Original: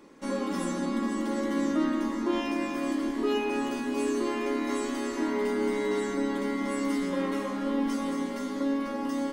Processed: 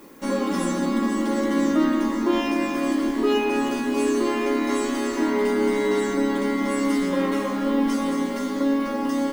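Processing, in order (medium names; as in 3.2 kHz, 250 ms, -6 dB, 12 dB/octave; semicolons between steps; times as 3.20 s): added noise violet -63 dBFS; trim +6.5 dB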